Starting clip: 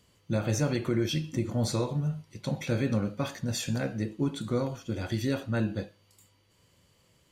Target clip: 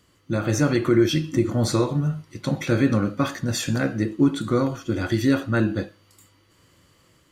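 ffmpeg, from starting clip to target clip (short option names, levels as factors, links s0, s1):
-af "dynaudnorm=f=340:g=3:m=1.5,superequalizer=6b=2:10b=2:11b=1.58,volume=1.33"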